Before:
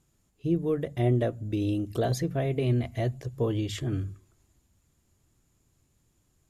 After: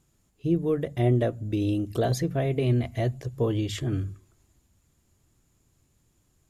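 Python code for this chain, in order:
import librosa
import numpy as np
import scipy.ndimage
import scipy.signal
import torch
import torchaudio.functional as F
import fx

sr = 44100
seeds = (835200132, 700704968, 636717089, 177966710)

y = x * 10.0 ** (2.0 / 20.0)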